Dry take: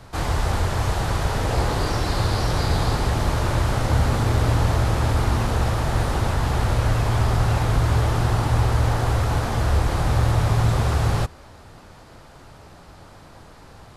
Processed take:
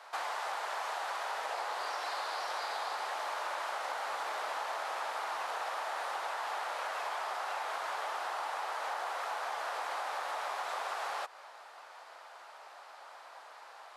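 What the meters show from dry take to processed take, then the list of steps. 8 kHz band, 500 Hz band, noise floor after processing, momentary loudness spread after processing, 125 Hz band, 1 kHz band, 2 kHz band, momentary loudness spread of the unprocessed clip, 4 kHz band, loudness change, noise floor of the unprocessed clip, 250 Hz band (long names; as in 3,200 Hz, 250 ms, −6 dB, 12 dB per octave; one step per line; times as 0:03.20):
−14.0 dB, −14.0 dB, −53 dBFS, 15 LU, below −40 dB, −7.0 dB, −7.5 dB, 3 LU, −11.0 dB, −15.0 dB, −46 dBFS, below −35 dB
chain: high-pass filter 680 Hz 24 dB per octave
high-shelf EQ 4,000 Hz −10 dB
downward compressor, threshold −34 dBFS, peak gain reduction 8 dB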